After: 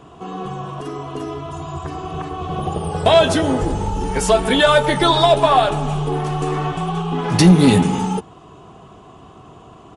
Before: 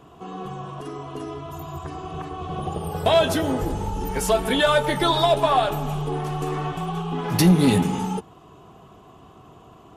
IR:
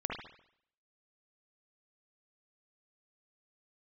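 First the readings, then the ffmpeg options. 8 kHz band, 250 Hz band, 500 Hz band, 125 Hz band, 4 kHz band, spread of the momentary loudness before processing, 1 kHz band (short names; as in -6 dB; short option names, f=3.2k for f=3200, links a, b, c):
+4.5 dB, +5.5 dB, +5.5 dB, +5.5 dB, +5.5 dB, 16 LU, +5.5 dB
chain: -af "aresample=22050,aresample=44100,volume=5.5dB"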